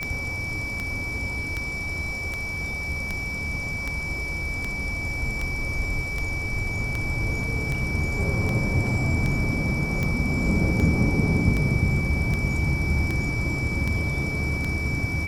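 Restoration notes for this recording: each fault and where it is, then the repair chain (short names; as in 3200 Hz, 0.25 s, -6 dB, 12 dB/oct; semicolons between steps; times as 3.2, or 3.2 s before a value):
tick 78 rpm -14 dBFS
tone 2300 Hz -29 dBFS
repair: de-click; notch 2300 Hz, Q 30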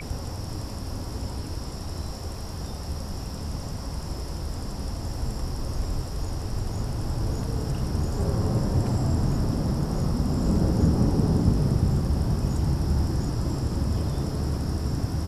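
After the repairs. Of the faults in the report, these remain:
none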